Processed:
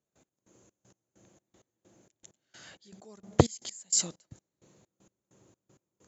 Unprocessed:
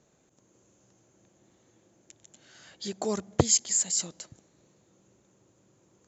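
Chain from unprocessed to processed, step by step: step gate "..x...xxx" 195 bpm -24 dB; gain +2 dB

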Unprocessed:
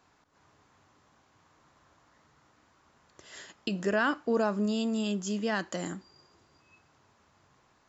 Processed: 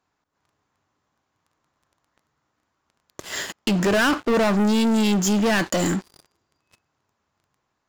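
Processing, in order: sample leveller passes 5

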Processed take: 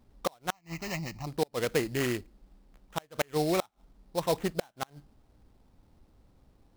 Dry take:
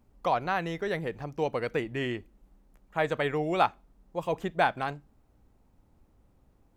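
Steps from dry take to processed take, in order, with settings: flipped gate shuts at -17 dBFS, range -34 dB; sample-rate reducer 4700 Hz, jitter 20%; 0.51–1.27 fixed phaser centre 2300 Hz, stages 8; gain +2 dB

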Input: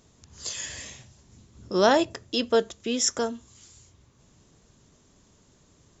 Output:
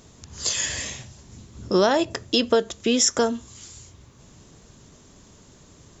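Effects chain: compressor 6:1, threshold -25 dBFS, peak gain reduction 11 dB; gain +9 dB

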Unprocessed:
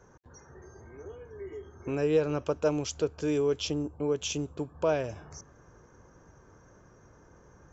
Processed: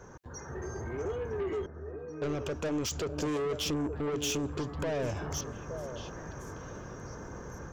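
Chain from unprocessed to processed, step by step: in parallel at +2.5 dB: compressor, threshold -39 dBFS, peak gain reduction 17.5 dB; on the sum: limiter -23.5 dBFS, peak gain reduction 10 dB; AGC gain up to 6 dB; soft clip -29.5 dBFS, distortion -8 dB; 1.66–2.22 octave resonator D#, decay 0.7 s; on a send: delay with a stepping band-pass 0.435 s, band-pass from 200 Hz, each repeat 1.4 oct, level -4 dB

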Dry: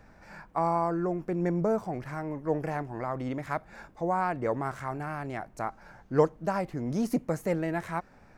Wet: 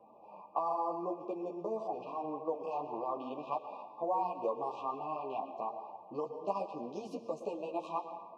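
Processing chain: in parallel at +2 dB: level quantiser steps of 15 dB; on the sum: low-pass opened by the level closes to 1100 Hz, open at -21 dBFS; compressor 10:1, threshold -28 dBFS, peak gain reduction 14.5 dB; BPF 490–3700 Hz; on a send at -8 dB: reverb RT60 1.2 s, pre-delay 0.108 s; on the sum: FFT band-reject 1200–2400 Hz; ensemble effect; gain +2.5 dB

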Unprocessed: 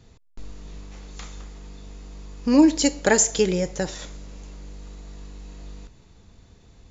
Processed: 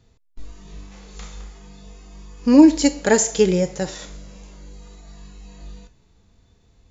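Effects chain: spectral noise reduction 8 dB; harmonic-percussive split percussive -8 dB; gain +5 dB

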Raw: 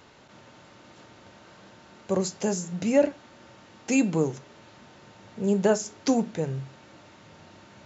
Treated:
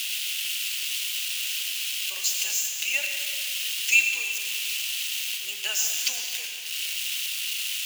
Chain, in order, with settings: switching spikes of -25 dBFS; resonant high-pass 2800 Hz, resonance Q 5.2; reverb RT60 2.2 s, pre-delay 75 ms, DRR 4 dB; gain +2.5 dB

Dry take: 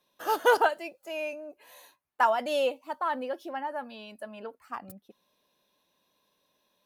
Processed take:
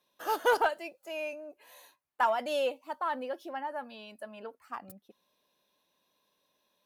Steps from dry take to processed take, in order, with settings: low shelf 210 Hz -4 dB; in parallel at -6.5 dB: soft clip -21.5 dBFS, distortion -11 dB; on the sum: gain -5.5 dB

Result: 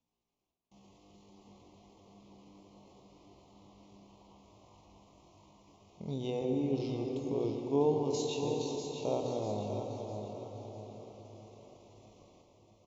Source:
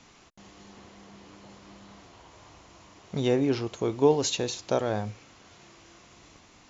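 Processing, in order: de-hum 62.05 Hz, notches 11; gate with hold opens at -44 dBFS; high shelf 2700 Hz -7 dB; tempo 0.52×; Butterworth band-stop 1600 Hz, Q 1.1; feedback echo 0.648 s, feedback 40%, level -8 dB; on a send at -4 dB: reverb RT60 5.5 s, pre-delay 92 ms; on the sum: gain -8 dB

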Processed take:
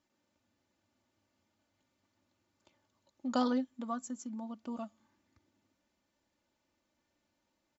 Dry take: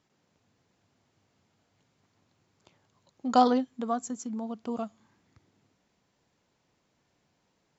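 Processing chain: comb 3.4 ms, depth 68%; gain -8.5 dB

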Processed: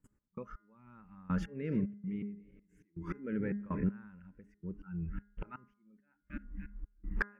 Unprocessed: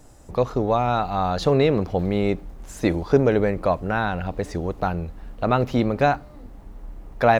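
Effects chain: 1.38–3.84 regenerating reverse delay 0.162 s, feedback 71%, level -13 dB; gate with hold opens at -40 dBFS; bell 200 Hz +15 dB 0.71 oct; thin delay 0.293 s, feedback 50%, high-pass 1700 Hz, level -23 dB; compressor 16:1, threshold -28 dBFS, peak gain reduction 22 dB; low shelf 90 Hz +8 dB; auto swell 0.355 s; spectral noise reduction 16 dB; step gate "x.x....xx" 81 bpm -24 dB; fixed phaser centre 1700 Hz, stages 4; overdrive pedal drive 11 dB, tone 1300 Hz, clips at -17.5 dBFS; de-hum 204.6 Hz, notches 10; gain +3.5 dB

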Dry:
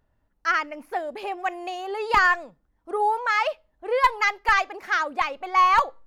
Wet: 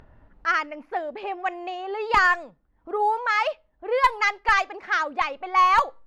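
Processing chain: low-pass opened by the level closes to 2300 Hz, open at -14.5 dBFS; upward compressor, threshold -37 dBFS

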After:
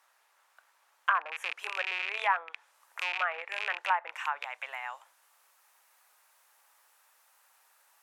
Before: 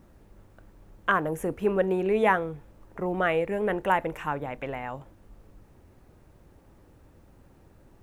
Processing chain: rattling part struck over -36 dBFS, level -22 dBFS; HPF 890 Hz 24 dB/oct; tilt +1.5 dB/oct; treble ducked by the level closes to 1300 Hz, closed at -24.5 dBFS; high shelf 7600 Hz -4.5 dB, from 1.09 s +7 dB

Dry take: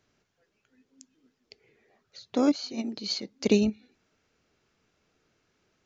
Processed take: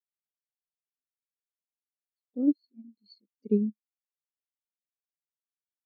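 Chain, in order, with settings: spectral expander 2.5:1; gain -4 dB

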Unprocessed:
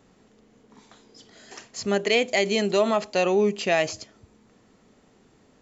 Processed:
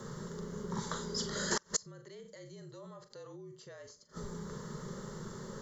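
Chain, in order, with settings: fixed phaser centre 510 Hz, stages 8; on a send: flutter echo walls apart 7 m, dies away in 0.23 s; on the sum: frequency shift -44 Hz; limiter -24 dBFS, peak gain reduction 10 dB; flipped gate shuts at -33 dBFS, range -35 dB; gain +16.5 dB

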